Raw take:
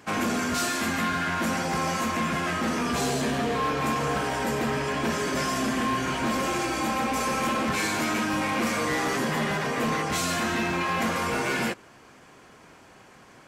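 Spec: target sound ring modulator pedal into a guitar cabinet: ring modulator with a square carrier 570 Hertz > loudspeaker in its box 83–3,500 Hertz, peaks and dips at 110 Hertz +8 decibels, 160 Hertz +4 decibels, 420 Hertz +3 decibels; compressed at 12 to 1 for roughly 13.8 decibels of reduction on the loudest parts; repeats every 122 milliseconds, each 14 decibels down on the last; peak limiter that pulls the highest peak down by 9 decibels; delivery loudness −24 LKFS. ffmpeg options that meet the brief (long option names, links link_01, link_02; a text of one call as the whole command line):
ffmpeg -i in.wav -af "acompressor=threshold=-38dB:ratio=12,alimiter=level_in=14dB:limit=-24dB:level=0:latency=1,volume=-14dB,aecho=1:1:122|244:0.2|0.0399,aeval=exprs='val(0)*sgn(sin(2*PI*570*n/s))':channel_layout=same,highpass=83,equalizer=frequency=110:width_type=q:width=4:gain=8,equalizer=frequency=160:width_type=q:width=4:gain=4,equalizer=frequency=420:width_type=q:width=4:gain=3,lowpass=frequency=3500:width=0.5412,lowpass=frequency=3500:width=1.3066,volume=19.5dB" out.wav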